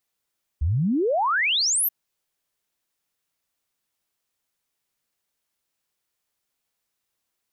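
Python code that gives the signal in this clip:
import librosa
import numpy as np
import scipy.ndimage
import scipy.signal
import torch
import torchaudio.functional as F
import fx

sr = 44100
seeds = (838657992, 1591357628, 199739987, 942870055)

y = fx.ess(sr, length_s=1.28, from_hz=67.0, to_hz=14000.0, level_db=-19.0)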